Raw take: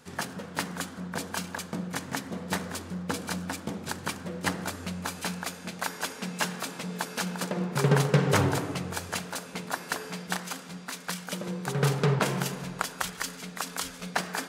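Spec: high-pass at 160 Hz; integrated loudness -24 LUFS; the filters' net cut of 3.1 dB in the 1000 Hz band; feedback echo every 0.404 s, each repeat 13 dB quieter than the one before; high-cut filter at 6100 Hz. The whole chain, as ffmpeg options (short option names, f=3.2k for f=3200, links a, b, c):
-af "highpass=160,lowpass=6.1k,equalizer=f=1k:t=o:g=-4,aecho=1:1:404|808|1212:0.224|0.0493|0.0108,volume=9.5dB"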